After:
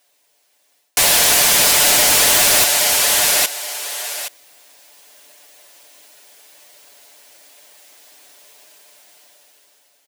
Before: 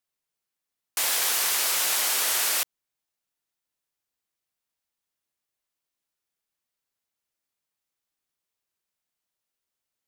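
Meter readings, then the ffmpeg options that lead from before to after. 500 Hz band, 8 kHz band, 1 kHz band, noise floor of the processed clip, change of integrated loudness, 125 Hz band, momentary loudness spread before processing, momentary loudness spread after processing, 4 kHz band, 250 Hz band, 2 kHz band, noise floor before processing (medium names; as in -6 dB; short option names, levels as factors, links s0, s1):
+18.5 dB, +13.0 dB, +13.5 dB, -62 dBFS, +10.0 dB, no reading, 5 LU, 14 LU, +13.5 dB, +20.0 dB, +13.0 dB, under -85 dBFS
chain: -filter_complex "[0:a]aecho=1:1:6.9:0.79,dynaudnorm=f=570:g=5:m=5.62,aecho=1:1:822|1644:0.0794|0.0191,areverse,acompressor=threshold=0.0355:ratio=16,areverse,equalizer=f=630:t=o:w=0.33:g=8,equalizer=f=1250:t=o:w=0.33:g=-7,equalizer=f=16000:t=o:w=0.33:g=-7,asplit=2[s0][s1];[s1]acrusher=bits=4:mix=0:aa=0.000001,volume=0.447[s2];[s0][s2]amix=inputs=2:normalize=0,highpass=350,aeval=exprs='0.237*sin(PI/2*5.01*val(0)/0.237)':c=same,volume=1.78"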